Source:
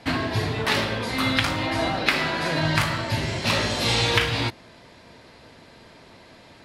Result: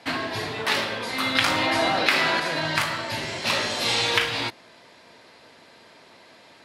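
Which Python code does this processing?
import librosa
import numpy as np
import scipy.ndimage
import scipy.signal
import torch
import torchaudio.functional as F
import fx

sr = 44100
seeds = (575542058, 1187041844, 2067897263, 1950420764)

y = fx.highpass(x, sr, hz=440.0, slope=6)
y = fx.env_flatten(y, sr, amount_pct=50, at=(1.35, 2.4))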